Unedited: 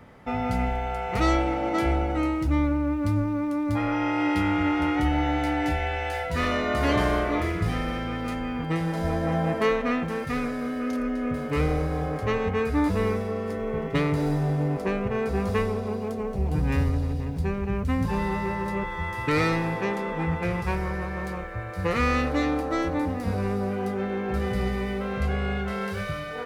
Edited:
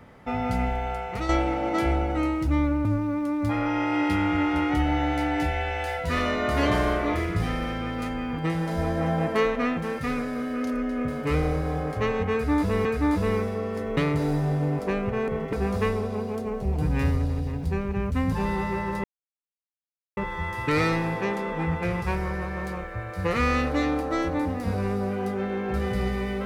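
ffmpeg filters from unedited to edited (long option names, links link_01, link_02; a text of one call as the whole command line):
ffmpeg -i in.wav -filter_complex "[0:a]asplit=8[link_01][link_02][link_03][link_04][link_05][link_06][link_07][link_08];[link_01]atrim=end=1.29,asetpts=PTS-STARTPTS,afade=type=out:start_time=0.91:duration=0.38:silence=0.334965[link_09];[link_02]atrim=start=1.29:end=2.852,asetpts=PTS-STARTPTS,afade=type=in:duration=0.004:curve=hsin:silence=0.334965[link_10];[link_03]atrim=start=3.108:end=13.112[link_11];[link_04]atrim=start=12.578:end=13.702[link_12];[link_05]atrim=start=13.948:end=15.262[link_13];[link_06]atrim=start=13.698:end=13.952[link_14];[link_07]atrim=start=15.258:end=18.77,asetpts=PTS-STARTPTS,afade=type=out:start_time=3.508:duration=0.004:curve=hsin,apad=pad_dur=1.13[link_15];[link_08]atrim=start=18.77,asetpts=PTS-STARTPTS,afade=type=in:duration=0.004:curve=hsin[link_16];[link_09][link_10]concat=n=2:v=0:a=1[link_17];[link_17][link_11]acrossfade=duration=0.004:curve1=hsin:curve2=hsin[link_18];[link_18][link_12]acrossfade=duration=0.004:curve1=hsin:curve2=hsin[link_19];[link_19][link_13]acrossfade=duration=0.004:curve1=hsin:curve2=hsin[link_20];[link_20][link_14]acrossfade=duration=0.004:curve1=hsin:curve2=hsin[link_21];[link_15][link_16]concat=n=2:v=0:a=1[link_22];[link_21][link_22]acrossfade=duration=0.004:curve1=hsin:curve2=hsin" out.wav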